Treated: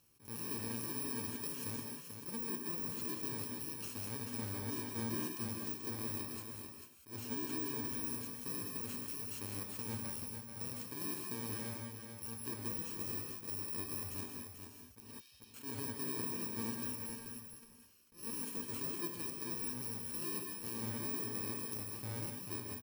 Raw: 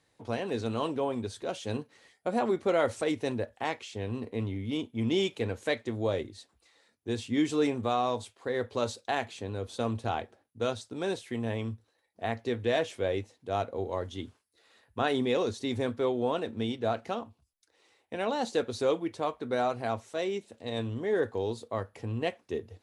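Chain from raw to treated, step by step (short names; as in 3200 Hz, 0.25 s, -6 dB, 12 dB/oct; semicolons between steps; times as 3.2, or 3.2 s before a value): FFT order left unsorted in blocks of 64 samples; de-esser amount 40%; limiter -23.5 dBFS, peak gain reduction 5.5 dB; compressor 2:1, threshold -49 dBFS, peak gain reduction 11.5 dB; 15–15.54 ladder band-pass 4000 Hz, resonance 45%; 17.08–18.23 tube stage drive 47 dB, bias 0.55; echo 0.439 s -7 dB; non-linear reverb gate 0.22 s rising, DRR 2.5 dB; attack slew limiter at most 190 dB/s; gain +1 dB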